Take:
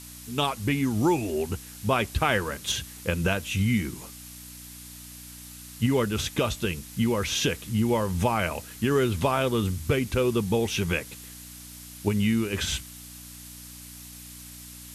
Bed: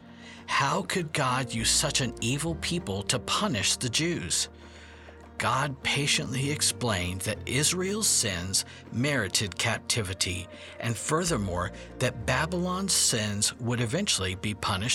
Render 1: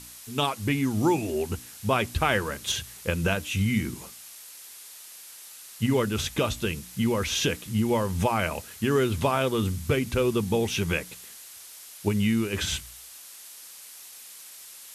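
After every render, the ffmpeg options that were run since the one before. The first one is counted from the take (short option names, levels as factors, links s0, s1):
-af "bandreject=f=60:t=h:w=4,bandreject=f=120:t=h:w=4,bandreject=f=180:t=h:w=4,bandreject=f=240:t=h:w=4,bandreject=f=300:t=h:w=4"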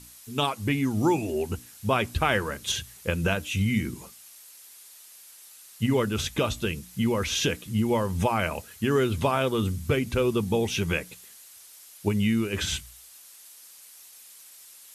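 -af "afftdn=nr=6:nf=-46"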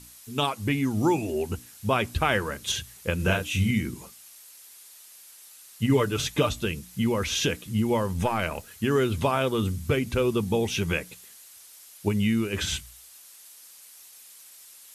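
-filter_complex "[0:a]asettb=1/sr,asplit=3[s0][s1][s2];[s0]atrim=end=3.164[s3];[s1]atrim=start=3.16:end=3.71,asetpts=PTS-STARTPTS,afade=t=in:d=0.004:c=qsin,afade=t=out:st=0.546:d=0.004:c=qsin,asplit=2[s4][s5];[s5]adelay=33,volume=0.708[s6];[s4][s6]amix=inputs=2:normalize=0,atrim=end_sample=24255[s7];[s2]atrim=start=3.706[s8];[s3][s7]acrossfade=d=0.004:c1=hsin:c2=qsin[s9];[s9][s8]acrossfade=d=0.004:c1=qsin:c2=hsin,asettb=1/sr,asplit=3[s10][s11][s12];[s10]atrim=end=5.894[s13];[s11]atrim=start=5.89:end=6.5,asetpts=PTS-STARTPTS,afade=t=in:d=0.004:c=qsin,afade=t=out:st=0.606:d=0.004:c=qsin,aecho=1:1:6.8:0.64,atrim=end_sample=26901[s14];[s12]atrim=start=6.496[s15];[s13][s14]acrossfade=d=0.004:c1=hsin:c2=qsin[s16];[s16][s15]acrossfade=d=0.004:c1=qsin:c2=hsin,asettb=1/sr,asplit=3[s17][s18][s19];[s17]atrim=end=8.134[s20];[s18]atrim=start=8.13:end=8.67,asetpts=PTS-STARTPTS,afade=t=in:d=0.004:c=qsin,afade=t=out:st=0.536:d=0.004:c=qsin,aeval=exprs='if(lt(val(0),0),0.708*val(0),val(0))':c=same[s21];[s19]atrim=start=8.666[s22];[s20][s21]acrossfade=d=0.004:c1=hsin:c2=qsin[s23];[s23][s22]acrossfade=d=0.004:c1=qsin:c2=hsin"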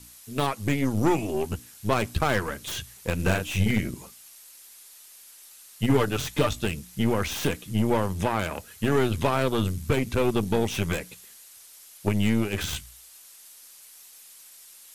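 -filter_complex "[0:a]acrossover=split=310|1700[s0][s1][s2];[s2]aeval=exprs='0.0376*(abs(mod(val(0)/0.0376+3,4)-2)-1)':c=same[s3];[s0][s1][s3]amix=inputs=3:normalize=0,aeval=exprs='0.355*(cos(1*acos(clip(val(0)/0.355,-1,1)))-cos(1*PI/2))+0.0316*(cos(8*acos(clip(val(0)/0.355,-1,1)))-cos(8*PI/2))':c=same"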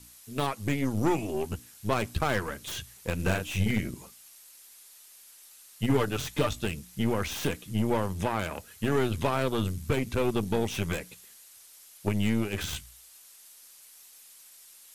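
-af "volume=0.668"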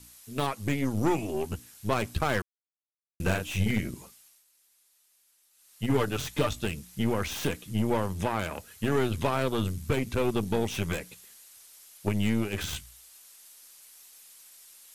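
-filter_complex "[0:a]asplit=5[s0][s1][s2][s3][s4];[s0]atrim=end=2.42,asetpts=PTS-STARTPTS,afade=t=out:st=2.416:d=0.004:c=hsin[s5];[s1]atrim=start=2.42:end=3.2,asetpts=PTS-STARTPTS,volume=0[s6];[s2]atrim=start=3.2:end=4.45,asetpts=PTS-STARTPTS,afade=t=in:d=0.004:c=hsin,afade=t=out:st=0.78:d=0.47:silence=0.211349[s7];[s3]atrim=start=4.45:end=5.52,asetpts=PTS-STARTPTS,volume=0.211[s8];[s4]atrim=start=5.52,asetpts=PTS-STARTPTS,afade=t=in:d=0.47:silence=0.211349[s9];[s5][s6][s7][s8][s9]concat=n=5:v=0:a=1"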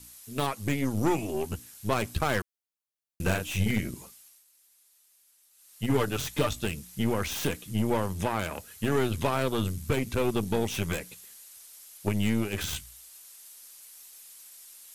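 -af "highshelf=f=6700:g=4.5"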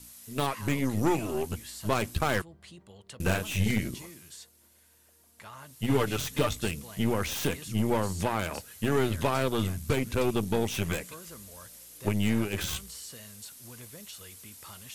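-filter_complex "[1:a]volume=0.0944[s0];[0:a][s0]amix=inputs=2:normalize=0"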